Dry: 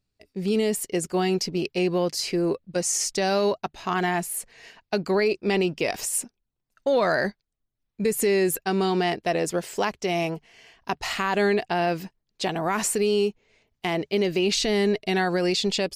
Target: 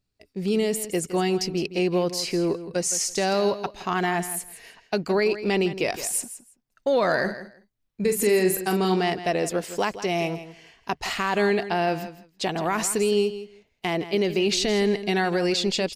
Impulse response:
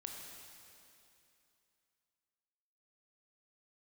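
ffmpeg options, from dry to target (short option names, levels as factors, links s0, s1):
-filter_complex "[0:a]asplit=3[s0][s1][s2];[s0]afade=t=out:st=7.27:d=0.02[s3];[s1]asplit=2[s4][s5];[s5]adelay=43,volume=0.447[s6];[s4][s6]amix=inputs=2:normalize=0,afade=t=in:st=7.27:d=0.02,afade=t=out:st=8.95:d=0.02[s7];[s2]afade=t=in:st=8.95:d=0.02[s8];[s3][s7][s8]amix=inputs=3:normalize=0,aecho=1:1:164|328:0.224|0.0358"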